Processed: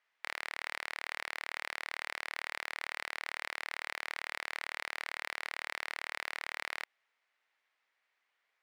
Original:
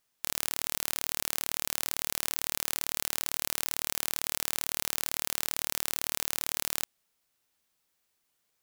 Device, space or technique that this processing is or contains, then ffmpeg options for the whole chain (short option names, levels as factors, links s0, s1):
megaphone: -af "highpass=660,lowpass=2600,equalizer=f=2000:t=o:w=0.55:g=7.5,asoftclip=type=hard:threshold=0.0531,volume=1.33"